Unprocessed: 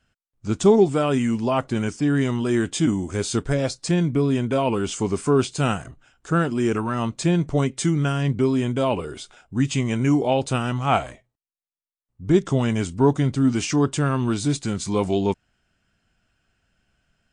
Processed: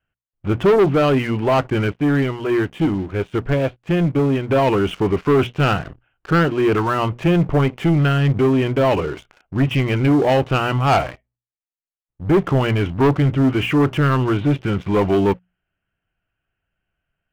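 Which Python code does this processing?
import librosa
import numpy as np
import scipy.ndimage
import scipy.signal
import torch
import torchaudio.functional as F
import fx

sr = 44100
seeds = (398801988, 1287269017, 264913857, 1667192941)

y = scipy.signal.sosfilt(scipy.signal.butter(12, 3100.0, 'lowpass', fs=sr, output='sos'), x)
y = fx.peak_eq(y, sr, hz=230.0, db=-11.5, octaves=0.23)
y = fx.hum_notches(y, sr, base_hz=60, count=4)
y = fx.leveller(y, sr, passes=3)
y = fx.upward_expand(y, sr, threshold_db=-25.0, expansion=1.5, at=(1.93, 4.49), fade=0.02)
y = y * librosa.db_to_amplitude(-2.5)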